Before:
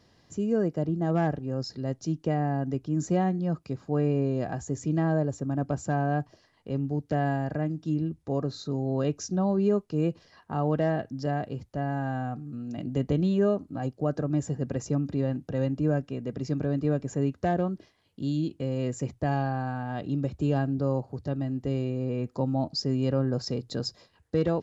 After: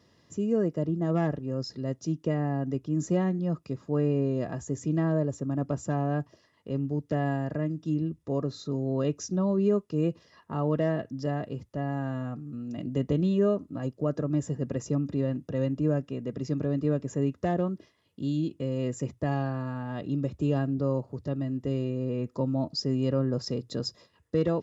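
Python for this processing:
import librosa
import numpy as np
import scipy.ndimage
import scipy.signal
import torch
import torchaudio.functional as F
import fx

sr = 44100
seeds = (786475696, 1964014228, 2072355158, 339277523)

y = fx.notch(x, sr, hz=4300.0, q=14.0)
y = fx.notch_comb(y, sr, f0_hz=770.0)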